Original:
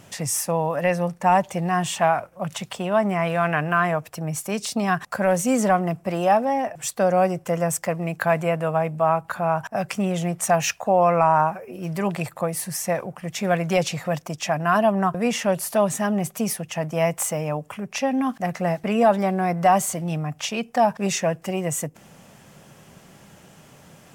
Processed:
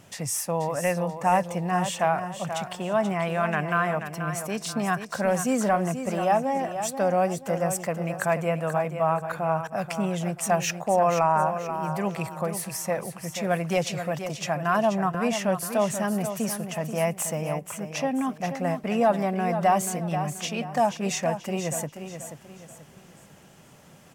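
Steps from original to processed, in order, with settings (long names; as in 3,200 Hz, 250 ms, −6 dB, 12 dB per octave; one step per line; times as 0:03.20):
repeating echo 483 ms, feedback 34%, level −9 dB
level −4 dB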